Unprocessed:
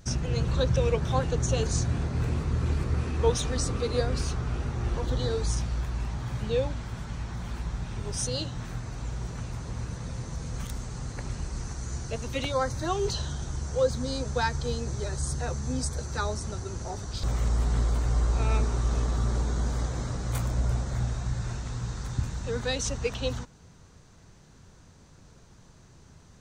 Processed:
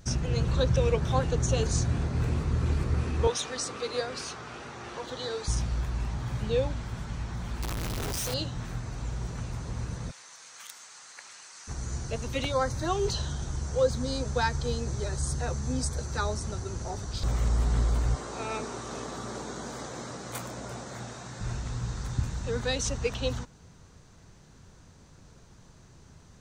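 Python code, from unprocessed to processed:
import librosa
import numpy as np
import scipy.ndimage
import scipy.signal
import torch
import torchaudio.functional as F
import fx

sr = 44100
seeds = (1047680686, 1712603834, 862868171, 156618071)

y = fx.weighting(x, sr, curve='A', at=(3.27, 5.48))
y = fx.clip_1bit(y, sr, at=(7.62, 8.34))
y = fx.highpass(y, sr, hz=1400.0, slope=12, at=(10.1, 11.67), fade=0.02)
y = fx.highpass(y, sr, hz=250.0, slope=12, at=(18.15, 21.41))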